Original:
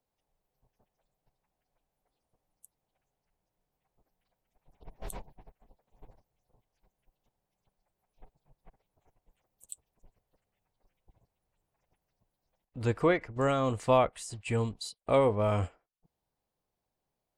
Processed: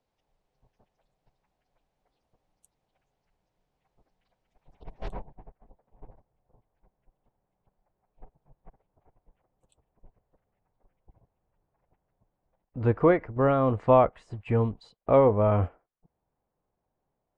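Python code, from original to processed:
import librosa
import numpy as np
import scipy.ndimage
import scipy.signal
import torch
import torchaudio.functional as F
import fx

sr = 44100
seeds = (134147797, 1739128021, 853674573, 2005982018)

y = fx.lowpass(x, sr, hz=fx.steps((0.0, 5200.0), (5.08, 1400.0)), slope=12)
y = y * librosa.db_to_amplitude(5.5)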